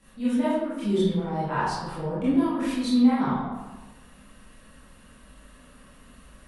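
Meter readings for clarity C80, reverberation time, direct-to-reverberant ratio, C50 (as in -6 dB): 1.5 dB, 1.2 s, -12.5 dB, -2.0 dB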